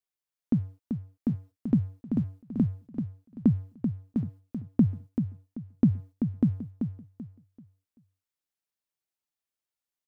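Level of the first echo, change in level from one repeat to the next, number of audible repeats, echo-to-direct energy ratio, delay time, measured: -7.0 dB, -11.0 dB, 3, -6.5 dB, 386 ms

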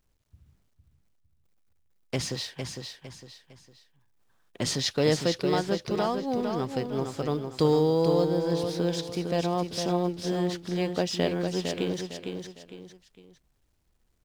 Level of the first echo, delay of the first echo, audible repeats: -6.0 dB, 456 ms, 3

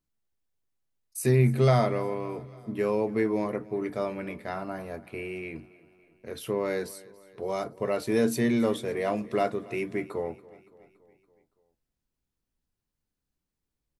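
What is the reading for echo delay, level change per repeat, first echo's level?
283 ms, -4.5 dB, -21.0 dB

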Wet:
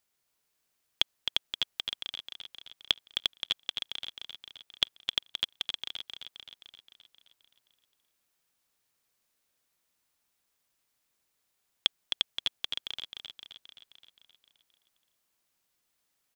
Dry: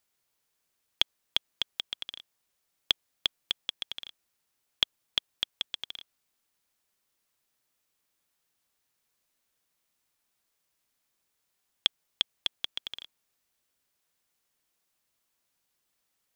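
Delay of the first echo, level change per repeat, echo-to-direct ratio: 262 ms, -4.5 dB, -4.0 dB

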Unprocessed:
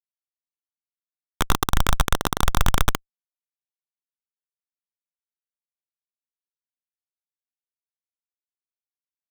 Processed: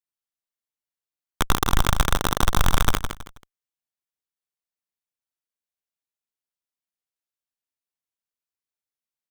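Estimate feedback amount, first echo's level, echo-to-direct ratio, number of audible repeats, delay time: 28%, -8.0 dB, -7.5 dB, 3, 161 ms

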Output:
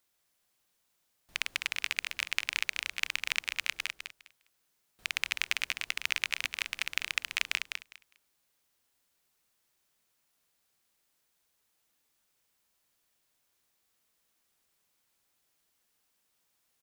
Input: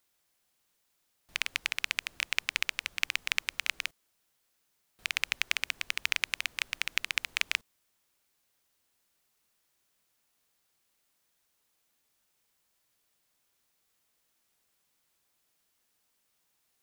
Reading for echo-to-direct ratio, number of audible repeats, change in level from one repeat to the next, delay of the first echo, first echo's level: -6.5 dB, 2, -15.0 dB, 203 ms, -6.5 dB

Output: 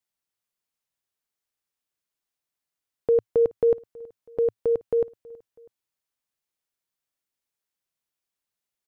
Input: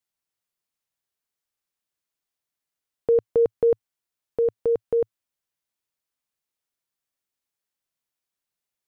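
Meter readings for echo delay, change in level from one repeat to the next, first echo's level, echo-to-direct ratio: 324 ms, -5.5 dB, -23.0 dB, -22.0 dB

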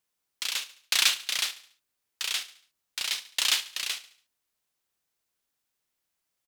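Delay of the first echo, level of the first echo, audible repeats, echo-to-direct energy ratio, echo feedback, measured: 71 ms, -15.5 dB, 3, -14.5 dB, 42%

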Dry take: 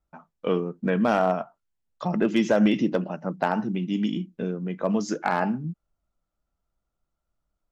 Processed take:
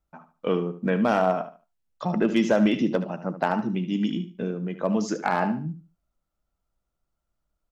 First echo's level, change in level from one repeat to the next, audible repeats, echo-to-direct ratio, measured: -12.0 dB, -12.5 dB, 2, -11.5 dB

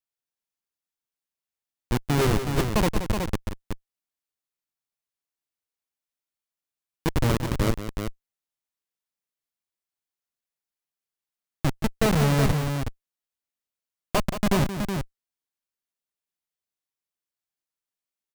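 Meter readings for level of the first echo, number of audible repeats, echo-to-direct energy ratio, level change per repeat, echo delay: -10.0 dB, 2, -4.5 dB, no regular repeats, 177 ms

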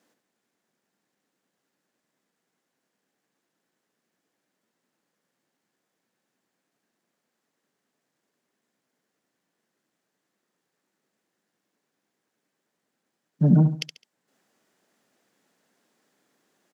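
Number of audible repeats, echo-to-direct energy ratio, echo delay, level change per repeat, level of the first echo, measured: 3, -9.5 dB, 70 ms, -10.0 dB, -10.0 dB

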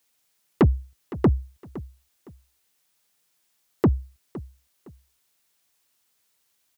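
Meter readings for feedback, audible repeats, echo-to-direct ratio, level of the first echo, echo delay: 26%, 2, -16.5 dB, -17.0 dB, 512 ms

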